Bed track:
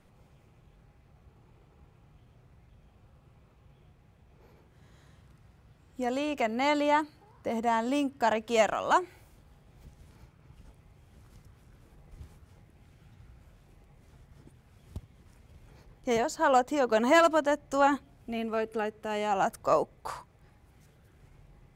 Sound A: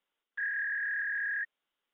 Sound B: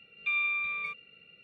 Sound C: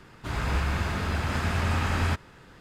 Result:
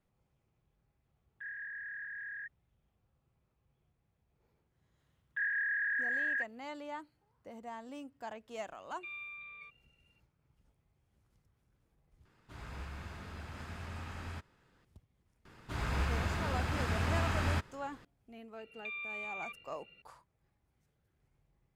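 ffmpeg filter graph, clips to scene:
-filter_complex "[1:a]asplit=2[a][b];[2:a]asplit=2[c][d];[3:a]asplit=2[e][f];[0:a]volume=-18dB[g];[d]acompressor=threshold=-36dB:ratio=6:attack=3.2:release=140:knee=1:detection=peak[h];[g]asplit=2[i][j];[i]atrim=end=12.254[k];[e]atrim=end=2.6,asetpts=PTS-STARTPTS,volume=-18dB[l];[j]atrim=start=14.846[m];[a]atrim=end=1.93,asetpts=PTS-STARTPTS,volume=-10.5dB,afade=t=in:d=0.004:c=hsin,afade=t=out:st=1.926:d=0.004:c=hsin,adelay=1030[n];[b]atrim=end=1.93,asetpts=PTS-STARTPTS,volume=-0.5dB,afade=t=in:d=0.004:c=hsin,afade=t=out:st=1.926:d=0.004:c=hsin,adelay=4990[o];[c]atrim=end=1.43,asetpts=PTS-STARTPTS,volume=-16dB,afade=t=in:d=0.004:c=hsin,afade=t=out:st=1.426:d=0.004:c=hsin,adelay=8770[p];[f]atrim=end=2.6,asetpts=PTS-STARTPTS,volume=-6.5dB,afade=t=in:d=0.004:c=hsin,afade=t=out:st=2.596:d=0.004:c=hsin,adelay=15450[q];[h]atrim=end=1.43,asetpts=PTS-STARTPTS,volume=-4dB,afade=t=in:d=0.004:c=hsin,afade=t=out:st=1.426:d=0.004:c=hsin,adelay=18590[r];[k][l]acrossfade=d=0.004:c1=hsin:c2=hsin[s];[s][m]acrossfade=d=0.004:c1=hsin:c2=hsin[t];[t][n][o][p][q][r]amix=inputs=6:normalize=0"

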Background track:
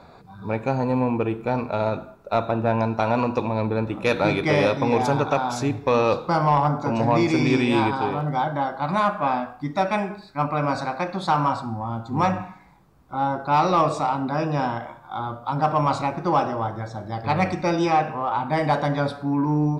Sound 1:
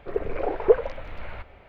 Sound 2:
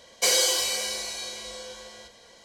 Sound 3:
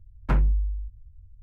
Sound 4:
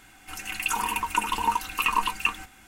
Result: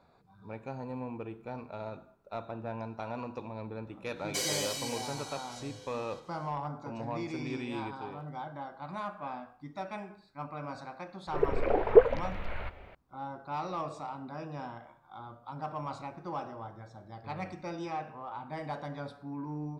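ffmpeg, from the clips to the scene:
-filter_complex "[0:a]volume=-17dB[a];[2:a]atrim=end=2.44,asetpts=PTS-STARTPTS,volume=-11.5dB,afade=t=in:d=0.1,afade=t=out:st=2.34:d=0.1,adelay=4120[b];[1:a]atrim=end=1.68,asetpts=PTS-STARTPTS,volume=-0.5dB,afade=t=in:d=0.004:c=hsin,afade=t=out:st=1.676:d=0.004:c=hsin,adelay=11270[c];[a][b][c]amix=inputs=3:normalize=0"

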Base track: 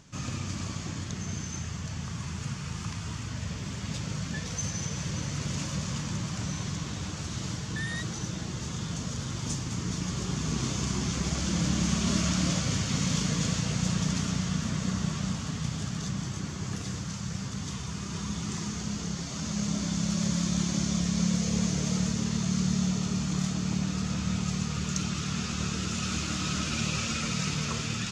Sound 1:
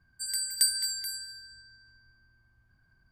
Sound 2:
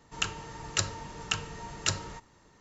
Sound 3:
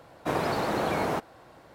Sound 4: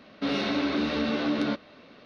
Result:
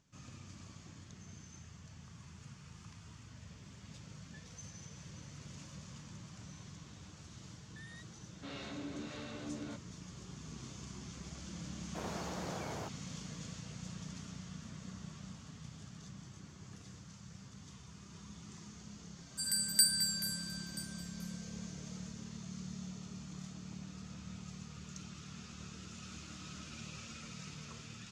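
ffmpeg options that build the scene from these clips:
-filter_complex "[0:a]volume=-18dB[a];[4:a]acrossover=split=550[b][c];[b]aeval=exprs='val(0)*(1-0.5/2+0.5/2*cos(2*PI*1.5*n/s))':c=same[d];[c]aeval=exprs='val(0)*(1-0.5/2-0.5/2*cos(2*PI*1.5*n/s))':c=same[e];[d][e]amix=inputs=2:normalize=0[f];[1:a]aecho=1:1:981:0.1[g];[f]atrim=end=2.05,asetpts=PTS-STARTPTS,volume=-16dB,afade=t=in:d=0.004:c=hsin,afade=t=out:st=2.046:d=0.004:c=hsin,adelay=8210[h];[3:a]atrim=end=1.74,asetpts=PTS-STARTPTS,volume=-16dB,afade=t=in:d=0.004:c=hsin,afade=t=out:st=1.736:d=0.004:c=hsin,adelay=11690[i];[g]atrim=end=3.11,asetpts=PTS-STARTPTS,volume=-2.5dB,afade=t=in:d=0.004:c=hsin,afade=t=out:st=3.106:d=0.004:c=hsin,adelay=19180[j];[a][h][i][j]amix=inputs=4:normalize=0"

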